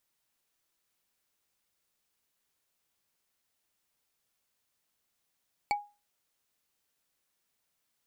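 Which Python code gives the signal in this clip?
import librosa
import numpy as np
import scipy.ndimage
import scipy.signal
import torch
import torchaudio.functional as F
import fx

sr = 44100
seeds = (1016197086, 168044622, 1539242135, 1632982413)

y = fx.strike_wood(sr, length_s=0.45, level_db=-22.5, body='bar', hz=824.0, decay_s=0.29, tilt_db=4.5, modes=5)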